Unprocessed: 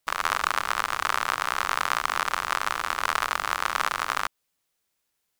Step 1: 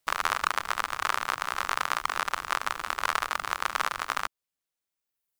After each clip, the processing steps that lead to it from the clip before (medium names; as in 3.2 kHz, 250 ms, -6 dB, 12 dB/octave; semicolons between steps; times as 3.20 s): reverb removal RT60 1.6 s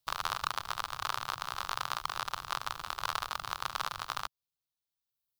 graphic EQ 125/250/500/2000/4000/8000 Hz +8/-10/-5/-11/+5/-6 dB; trim -2.5 dB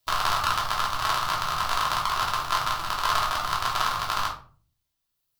simulated room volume 310 m³, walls furnished, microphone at 3 m; trim +5 dB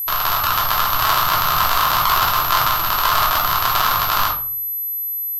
level rider gain up to 16 dB; whistle 12 kHz -25 dBFS; loudness maximiser +4.5 dB; trim -1 dB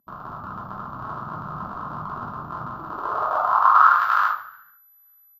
resonant high shelf 1.7 kHz -7 dB, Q 3; frequency-shifting echo 143 ms, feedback 33%, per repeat +51 Hz, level -19.5 dB; band-pass sweep 210 Hz -> 1.8 kHz, 2.71–4.03 s; trim +2.5 dB